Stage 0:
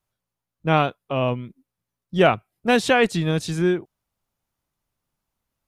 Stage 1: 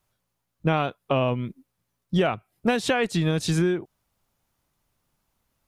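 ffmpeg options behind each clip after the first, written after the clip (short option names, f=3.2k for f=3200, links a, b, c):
-af "acompressor=threshold=-25dB:ratio=16,volume=6.5dB"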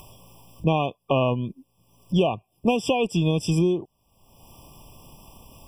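-af "acompressor=mode=upward:threshold=-27dB:ratio=2.5,afftfilt=real='re*eq(mod(floor(b*sr/1024/1200),2),0)':imag='im*eq(mod(floor(b*sr/1024/1200),2),0)':win_size=1024:overlap=0.75,volume=1.5dB"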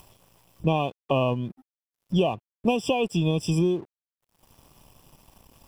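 -af "aeval=exprs='sgn(val(0))*max(abs(val(0))-0.00299,0)':c=same,volume=-1.5dB"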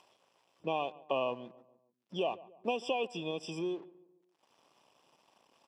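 -filter_complex "[0:a]highpass=400,lowpass=5.2k,asplit=2[a][b];[b]adelay=143,lowpass=f=1.5k:p=1,volume=-18.5dB,asplit=2[c][d];[d]adelay=143,lowpass=f=1.5k:p=1,volume=0.46,asplit=2[e][f];[f]adelay=143,lowpass=f=1.5k:p=1,volume=0.46,asplit=2[g][h];[h]adelay=143,lowpass=f=1.5k:p=1,volume=0.46[i];[a][c][e][g][i]amix=inputs=5:normalize=0,volume=-7dB"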